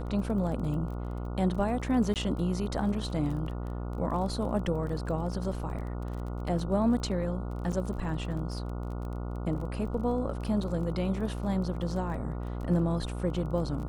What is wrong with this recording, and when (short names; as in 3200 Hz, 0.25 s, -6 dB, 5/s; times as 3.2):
buzz 60 Hz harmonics 24 -35 dBFS
crackle 23/s -38 dBFS
2.14–2.16 gap 18 ms
7.72–7.73 gap 6.8 ms